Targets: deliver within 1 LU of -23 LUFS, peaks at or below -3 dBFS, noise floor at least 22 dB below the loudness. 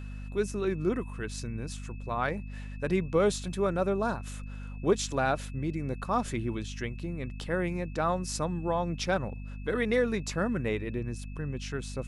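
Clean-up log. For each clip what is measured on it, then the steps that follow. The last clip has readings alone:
hum 50 Hz; harmonics up to 250 Hz; hum level -37 dBFS; steady tone 2600 Hz; tone level -55 dBFS; loudness -31.5 LUFS; peak -12.0 dBFS; loudness target -23.0 LUFS
-> notches 50/100/150/200/250 Hz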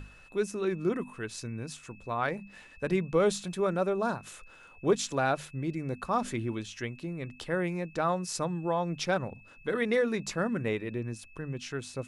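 hum none; steady tone 2600 Hz; tone level -55 dBFS
-> notch 2600 Hz, Q 30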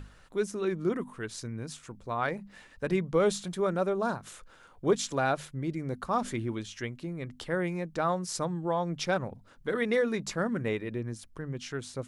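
steady tone none; loudness -32.0 LUFS; peak -13.5 dBFS; loudness target -23.0 LUFS
-> gain +9 dB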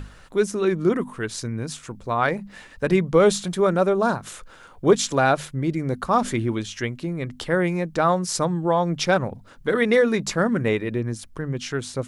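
loudness -23.0 LUFS; peak -4.5 dBFS; noise floor -47 dBFS

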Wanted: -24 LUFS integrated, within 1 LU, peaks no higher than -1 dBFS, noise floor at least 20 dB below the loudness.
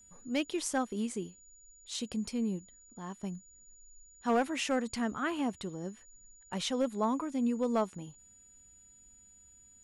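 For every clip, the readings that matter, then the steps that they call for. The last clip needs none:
clipped 0.3%; flat tops at -22.0 dBFS; steady tone 6900 Hz; tone level -57 dBFS; loudness -34.0 LUFS; peak -22.0 dBFS; loudness target -24.0 LUFS
-> clip repair -22 dBFS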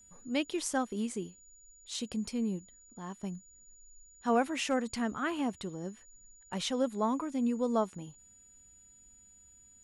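clipped 0.0%; steady tone 6900 Hz; tone level -57 dBFS
-> notch 6900 Hz, Q 30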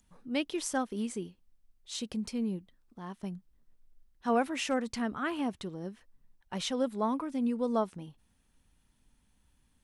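steady tone none; loudness -34.0 LUFS; peak -16.5 dBFS; loudness target -24.0 LUFS
-> gain +10 dB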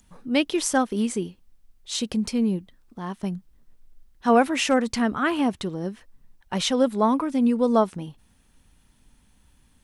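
loudness -24.0 LUFS; peak -6.5 dBFS; noise floor -61 dBFS

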